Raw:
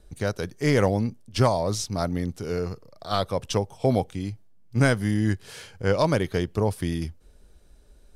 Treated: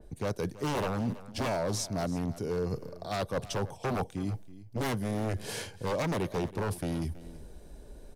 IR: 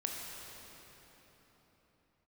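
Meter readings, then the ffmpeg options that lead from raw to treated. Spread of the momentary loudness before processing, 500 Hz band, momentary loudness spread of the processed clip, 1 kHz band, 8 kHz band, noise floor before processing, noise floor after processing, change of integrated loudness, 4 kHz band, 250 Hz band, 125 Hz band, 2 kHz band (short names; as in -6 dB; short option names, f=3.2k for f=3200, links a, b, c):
11 LU, -7.5 dB, 10 LU, -6.0 dB, -4.0 dB, -54 dBFS, -51 dBFS, -7.5 dB, -6.5 dB, -7.0 dB, -8.5 dB, -8.5 dB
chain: -filter_complex "[0:a]equalizer=f=4.2k:t=o:w=2.2:g=-3.5,bandreject=f=1.3k:w=6,aeval=exprs='0.0891*(abs(mod(val(0)/0.0891+3,4)-2)-1)':c=same,areverse,acompressor=threshold=-41dB:ratio=4,areverse,aecho=1:1:327:0.141,acrossover=split=120|1200[a][b][c];[b]acontrast=37[d];[a][d][c]amix=inputs=3:normalize=0,adynamicequalizer=threshold=0.00141:dfrequency=2800:dqfactor=0.7:tfrequency=2800:tqfactor=0.7:attack=5:release=100:ratio=0.375:range=2:mode=boostabove:tftype=highshelf,volume=5dB"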